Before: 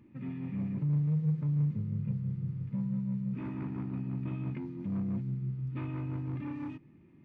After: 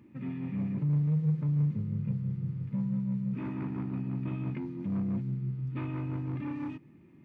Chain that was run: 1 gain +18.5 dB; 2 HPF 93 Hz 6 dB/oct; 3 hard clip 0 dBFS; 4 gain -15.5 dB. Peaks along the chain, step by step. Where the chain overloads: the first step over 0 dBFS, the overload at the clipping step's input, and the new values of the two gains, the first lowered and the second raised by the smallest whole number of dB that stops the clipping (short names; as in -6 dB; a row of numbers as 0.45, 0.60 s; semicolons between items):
-3.0, -5.0, -5.0, -20.5 dBFS; no overload